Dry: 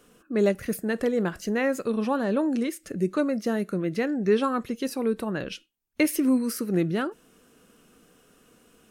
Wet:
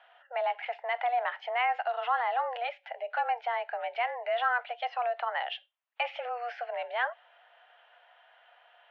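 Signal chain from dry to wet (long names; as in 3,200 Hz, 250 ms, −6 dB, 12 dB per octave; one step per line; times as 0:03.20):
brickwall limiter −19 dBFS, peak gain reduction 9.5 dB
single-sideband voice off tune +240 Hz 470–3,000 Hz
level +3.5 dB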